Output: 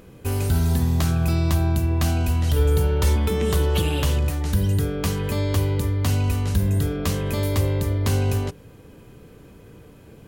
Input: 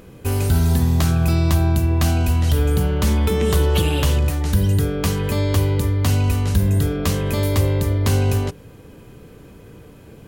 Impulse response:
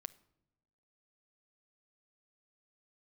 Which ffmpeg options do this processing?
-filter_complex "[0:a]asettb=1/sr,asplit=3[link_01][link_02][link_03];[link_01]atrim=end=2.564[link_04];[link_02]atrim=start=2.56:end=3.16,asetpts=PTS-STARTPTS,afade=type=in:duration=0.004:curve=qsin,afade=type=out:start_time=0.596:duration=0.004:curve=qsin,aecho=1:1:2.2:0.68,atrim=end_sample=26460[link_05];[link_03]atrim=start=3.156[link_06];[link_04][link_05]acrossfade=duration=0.004:curve1=hsin:curve2=qsin[link_07];[link_07][link_06]acrossfade=duration=0.004:curve1=qsin:curve2=hsin,volume=-3.5dB"

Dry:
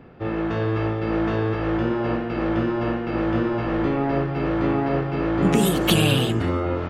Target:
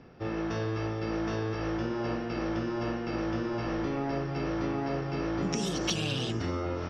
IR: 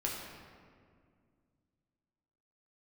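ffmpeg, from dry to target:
-af "lowpass=frequency=5600:width_type=q:width=14,acompressor=threshold=-21dB:ratio=5,volume=-6.5dB"

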